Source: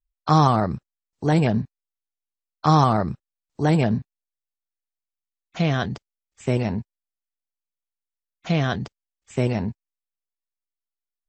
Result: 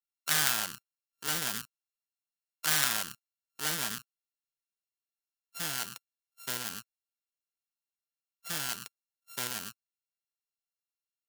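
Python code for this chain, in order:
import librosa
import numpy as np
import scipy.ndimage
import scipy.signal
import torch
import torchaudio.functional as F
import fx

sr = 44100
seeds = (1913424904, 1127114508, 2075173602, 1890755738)

y = np.r_[np.sort(x[:len(x) // 32 * 32].reshape(-1, 32), axis=1).ravel(), x[len(x) // 32 * 32:]]
y = fx.tilt_eq(y, sr, slope=4.5)
y = fx.doppler_dist(y, sr, depth_ms=0.47)
y = y * 10.0 ** (-14.0 / 20.0)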